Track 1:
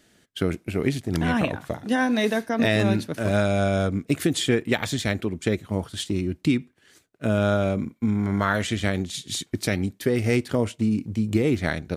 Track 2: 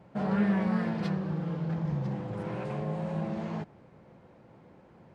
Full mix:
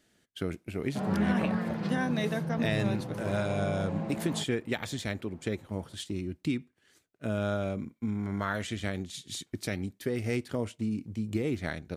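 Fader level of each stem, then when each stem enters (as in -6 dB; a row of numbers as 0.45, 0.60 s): -9.0, -2.0 dB; 0.00, 0.80 s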